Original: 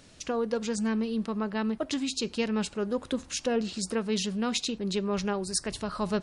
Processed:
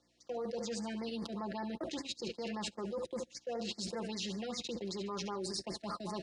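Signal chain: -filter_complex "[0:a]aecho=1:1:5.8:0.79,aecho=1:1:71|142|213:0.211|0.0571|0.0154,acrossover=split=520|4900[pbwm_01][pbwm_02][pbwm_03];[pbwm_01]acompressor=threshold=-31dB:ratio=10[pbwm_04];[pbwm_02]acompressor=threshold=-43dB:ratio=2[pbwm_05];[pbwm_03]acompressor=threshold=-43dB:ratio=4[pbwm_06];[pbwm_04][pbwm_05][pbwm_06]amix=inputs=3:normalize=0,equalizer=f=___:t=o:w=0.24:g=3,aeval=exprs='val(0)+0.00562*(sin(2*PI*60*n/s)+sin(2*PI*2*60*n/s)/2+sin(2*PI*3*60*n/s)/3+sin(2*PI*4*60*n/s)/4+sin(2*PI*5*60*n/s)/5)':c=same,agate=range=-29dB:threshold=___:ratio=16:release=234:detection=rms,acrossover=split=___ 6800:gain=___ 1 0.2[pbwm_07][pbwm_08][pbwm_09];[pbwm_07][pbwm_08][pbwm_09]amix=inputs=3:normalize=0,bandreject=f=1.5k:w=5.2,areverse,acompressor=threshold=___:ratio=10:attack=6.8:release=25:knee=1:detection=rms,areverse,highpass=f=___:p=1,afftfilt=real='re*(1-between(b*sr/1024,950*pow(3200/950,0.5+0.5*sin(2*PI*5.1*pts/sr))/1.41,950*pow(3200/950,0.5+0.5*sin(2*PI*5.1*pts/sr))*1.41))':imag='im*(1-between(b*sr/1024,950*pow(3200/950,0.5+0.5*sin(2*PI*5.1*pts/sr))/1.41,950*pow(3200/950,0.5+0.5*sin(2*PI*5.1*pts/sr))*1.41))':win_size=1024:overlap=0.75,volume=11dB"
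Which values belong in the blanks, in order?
930, -32dB, 270, 0.224, -48dB, 140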